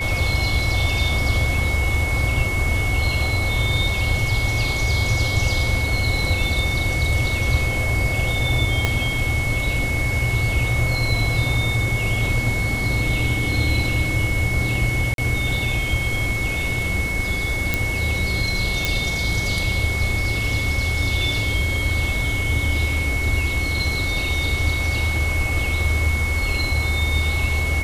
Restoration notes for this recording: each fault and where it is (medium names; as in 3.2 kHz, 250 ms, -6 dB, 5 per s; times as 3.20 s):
whine 2.2 kHz -24 dBFS
8.85 s: pop -5 dBFS
15.14–15.18 s: dropout 42 ms
17.74 s: pop
18.85 s: pop